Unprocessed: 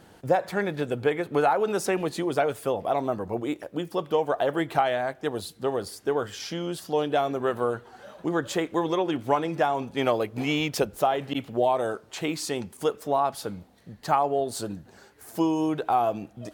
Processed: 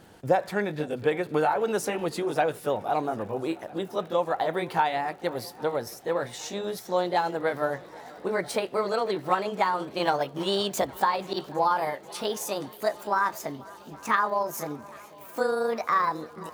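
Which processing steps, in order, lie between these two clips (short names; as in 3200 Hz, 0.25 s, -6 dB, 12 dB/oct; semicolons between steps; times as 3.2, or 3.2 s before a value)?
gliding pitch shift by +7.5 st starting unshifted; crackle 49/s -44 dBFS; swung echo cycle 0.81 s, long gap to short 1.5:1, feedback 67%, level -23 dB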